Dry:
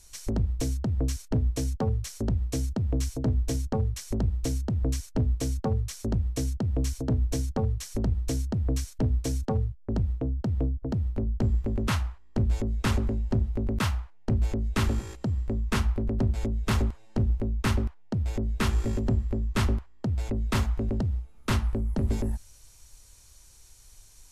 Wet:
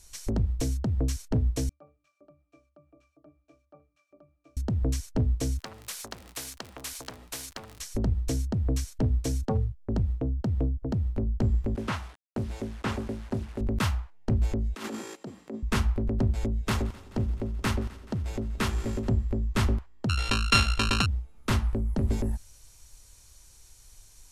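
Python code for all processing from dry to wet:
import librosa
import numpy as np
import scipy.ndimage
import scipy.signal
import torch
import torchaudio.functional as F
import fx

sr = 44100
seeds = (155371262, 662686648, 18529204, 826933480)

y = fx.chain(x, sr, fx.highpass(hz=600.0, slope=12),
    fx.octave_resonator(note='D', decay_s=0.22), at=(1.69, 4.57))
y = fx.low_shelf(y, sr, hz=210.0, db=-11.0, at=(5.58, 7.79), fade=0.02)
y = fx.dmg_crackle(y, sr, seeds[0], per_s=52.0, level_db=-42.0, at=(5.58, 7.79), fade=0.02)
y = fx.spectral_comp(y, sr, ratio=4.0, at=(5.58, 7.79), fade=0.02)
y = fx.chain(y, sr, fx.delta_mod(bps=64000, step_db=-41.5),
    fx.highpass(hz=220.0, slope=6),
    fx.high_shelf(hz=4300.0, db=-7.5), at=(11.75, 13.61))
y = fx.chain(y, sr, fx.highpass(hz=230.0, slope=24),
    fx.over_compress(threshold_db=-36.0, ratio=-1.0), at=(14.75, 15.63))
y = fx.chain(y, sr, fx.low_shelf(hz=140.0, db=-5.5),
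    fx.echo_heads(ms=86, heads='second and third', feedback_pct=70, wet_db=-22.0), at=(16.61, 19.1))
y = fx.chain(y, sr, fx.sample_sort(block=32),
    fx.lowpass(hz=11000.0, slope=24),
    fx.peak_eq(hz=3400.0, db=15.0, octaves=2.2), at=(20.09, 21.06))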